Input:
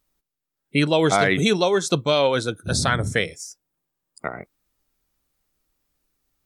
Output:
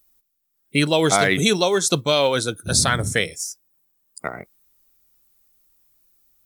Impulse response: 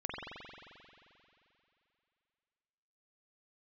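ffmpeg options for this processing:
-af "aemphasis=mode=production:type=50kf,acrusher=bits=9:mode=log:mix=0:aa=0.000001"

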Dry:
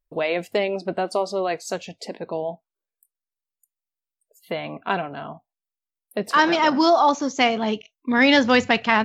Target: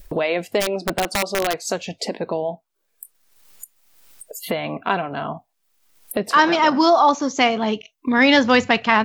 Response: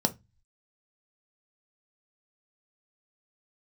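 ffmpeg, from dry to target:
-filter_complex "[0:a]acompressor=mode=upward:threshold=-19dB:ratio=2.5,adynamicequalizer=threshold=0.0282:dfrequency=1100:dqfactor=3.5:tfrequency=1100:tqfactor=3.5:attack=5:release=100:ratio=0.375:range=1.5:mode=boostabove:tftype=bell,asplit=3[a][b][c];[a]afade=t=out:st=0.6:d=0.02[d];[b]aeval=exprs='(mod(5.62*val(0)+1,2)-1)/5.62':c=same,afade=t=in:st=0.6:d=0.02,afade=t=out:st=1.62:d=0.02[e];[c]afade=t=in:st=1.62:d=0.02[f];[d][e][f]amix=inputs=3:normalize=0,volume=1.5dB"

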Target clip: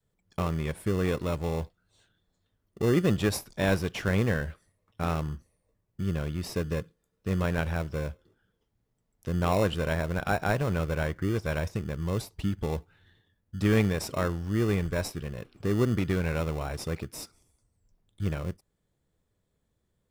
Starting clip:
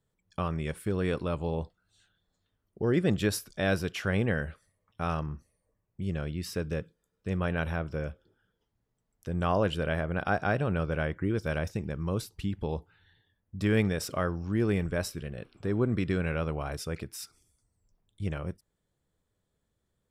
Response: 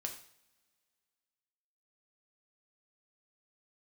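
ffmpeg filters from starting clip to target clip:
-filter_complex "[0:a]adynamicequalizer=threshold=0.01:dfrequency=240:dqfactor=0.79:tfrequency=240:tqfactor=0.79:attack=5:release=100:ratio=0.375:range=2:mode=cutabove:tftype=bell,asplit=2[a][b];[b]acrusher=samples=28:mix=1:aa=0.000001,volume=-6.5dB[c];[a][c]amix=inputs=2:normalize=0"

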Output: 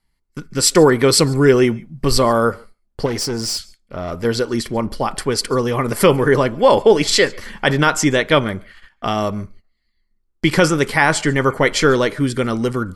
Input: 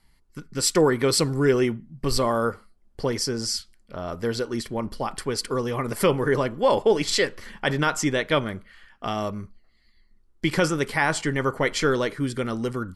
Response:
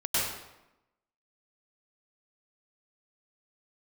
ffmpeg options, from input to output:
-filter_complex "[0:a]asettb=1/sr,asplit=3[a][b][c];[a]atrim=end=3.064[d];[b]atrim=start=3.06:end=4.25,asetpts=PTS-STARTPTS,afade=t=in:d=0.004:c=qsin,afade=t=out:st=1.186:d=0.004:c=qsin,aeval=exprs='(tanh(17.8*val(0)+0.2)-tanh(0.2))/17.8':c=same[e];[c]atrim=start=4.246[f];[d][e]acrossfade=d=0.004:c1=hsin:c2=qsin[g];[g][f]acrossfade=d=0.004:c1=qsin:c2=hsin,agate=range=-16dB:threshold=-48dB:ratio=16:detection=peak,asplit=2[h][i];[1:a]atrim=start_sample=2205,afade=t=out:st=0.14:d=0.01,atrim=end_sample=6615,asetrate=29547,aresample=44100[j];[i][j]afir=irnorm=-1:irlink=0,volume=-20dB[k];[h][k]amix=inputs=2:normalize=0,volume=7dB"

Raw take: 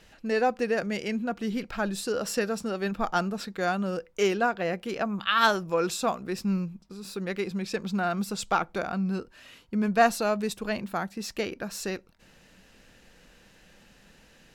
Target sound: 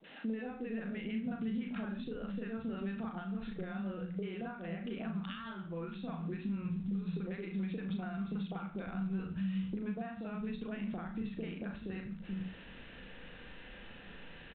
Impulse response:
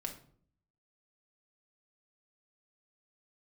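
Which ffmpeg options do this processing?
-filter_complex "[0:a]adynamicequalizer=threshold=0.00891:dfrequency=480:dqfactor=1.4:tfrequency=480:tqfactor=1.4:attack=5:release=100:ratio=0.375:range=2.5:mode=cutabove:tftype=bell,acrossover=split=180|690[a][b][c];[c]adelay=40[d];[a]adelay=430[e];[e][b][d]amix=inputs=3:normalize=0,acompressor=threshold=-36dB:ratio=5,asplit=2[f][g];[1:a]atrim=start_sample=2205,atrim=end_sample=6174,adelay=36[h];[g][h]afir=irnorm=-1:irlink=0,volume=-3dB[i];[f][i]amix=inputs=2:normalize=0,acrossover=split=110|240[j][k][l];[j]acompressor=threshold=-55dB:ratio=4[m];[k]acompressor=threshold=-42dB:ratio=4[n];[l]acompressor=threshold=-52dB:ratio=4[o];[m][n][o]amix=inputs=3:normalize=0,volume=5dB" -ar 8000 -c:a pcm_mulaw

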